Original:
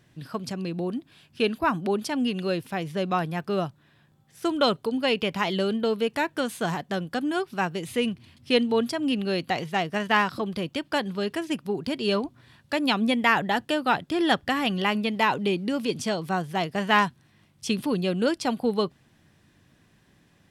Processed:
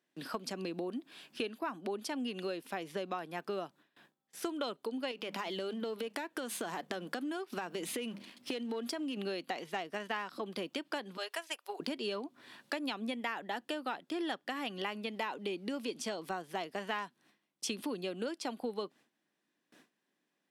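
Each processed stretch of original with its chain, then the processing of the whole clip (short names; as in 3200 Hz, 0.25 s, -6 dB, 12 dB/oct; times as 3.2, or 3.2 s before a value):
5.11–9.17 notches 50/100/150/200 Hz + sample leveller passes 1 + compressor 10:1, threshold -27 dBFS
11.17–11.8 HPF 590 Hz 24 dB/oct + high shelf 8700 Hz +6 dB + upward expander, over -46 dBFS
whole clip: gate with hold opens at -48 dBFS; HPF 240 Hz 24 dB/oct; compressor 6:1, threshold -38 dBFS; gain +2.5 dB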